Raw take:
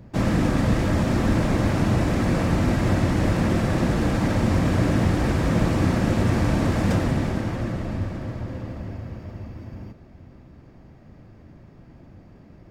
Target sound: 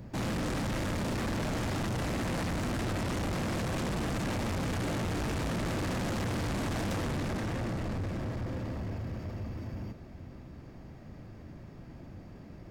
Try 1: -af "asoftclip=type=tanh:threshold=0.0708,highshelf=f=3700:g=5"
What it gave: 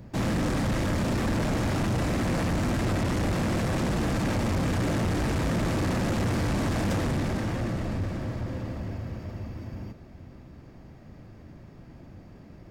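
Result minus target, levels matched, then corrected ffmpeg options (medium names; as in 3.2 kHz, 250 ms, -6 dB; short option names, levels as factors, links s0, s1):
saturation: distortion -4 dB
-af "asoftclip=type=tanh:threshold=0.0282,highshelf=f=3700:g=5"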